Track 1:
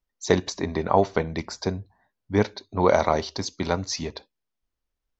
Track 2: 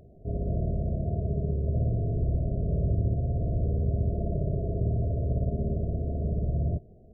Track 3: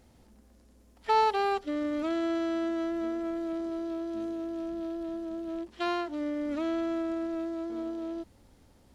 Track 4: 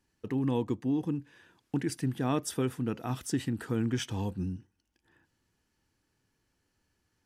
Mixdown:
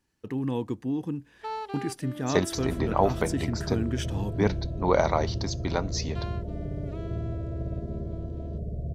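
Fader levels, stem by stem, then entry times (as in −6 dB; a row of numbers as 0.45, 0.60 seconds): −3.5, −5.5, −10.5, 0.0 decibels; 2.05, 2.30, 0.35, 0.00 seconds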